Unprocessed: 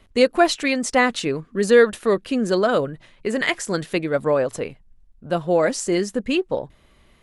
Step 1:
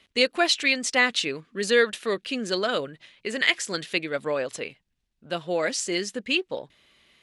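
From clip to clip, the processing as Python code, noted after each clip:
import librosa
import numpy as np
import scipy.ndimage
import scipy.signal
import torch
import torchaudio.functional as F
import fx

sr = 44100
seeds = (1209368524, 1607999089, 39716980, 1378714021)

y = fx.weighting(x, sr, curve='D')
y = F.gain(torch.from_numpy(y), -7.5).numpy()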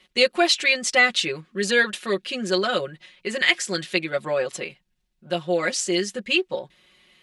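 y = x + 0.92 * np.pad(x, (int(5.5 * sr / 1000.0), 0))[:len(x)]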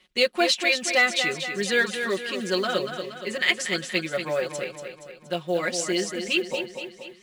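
y = fx.quant_float(x, sr, bits=4)
y = fx.echo_feedback(y, sr, ms=236, feedback_pct=53, wet_db=-8.0)
y = F.gain(torch.from_numpy(y), -3.0).numpy()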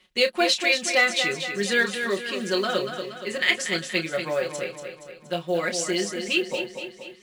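y = fx.doubler(x, sr, ms=30.0, db=-9.5)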